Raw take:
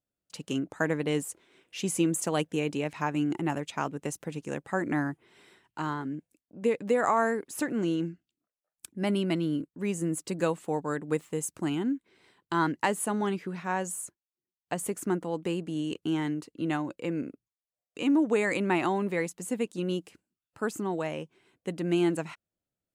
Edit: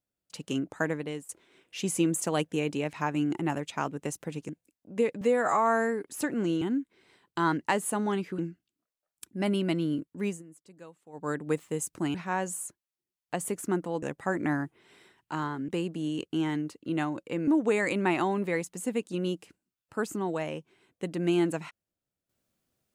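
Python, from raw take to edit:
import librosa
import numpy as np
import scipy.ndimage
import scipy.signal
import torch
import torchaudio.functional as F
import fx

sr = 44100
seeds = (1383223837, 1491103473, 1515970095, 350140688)

y = fx.edit(x, sr, fx.fade_out_to(start_s=0.76, length_s=0.53, floor_db=-17.0),
    fx.move(start_s=4.49, length_s=1.66, to_s=15.41),
    fx.stretch_span(start_s=6.87, length_s=0.55, factor=1.5),
    fx.fade_down_up(start_s=9.88, length_s=1.02, db=-21.0, fade_s=0.16),
    fx.move(start_s=11.76, length_s=1.77, to_s=8.0),
    fx.cut(start_s=17.2, length_s=0.92), tone=tone)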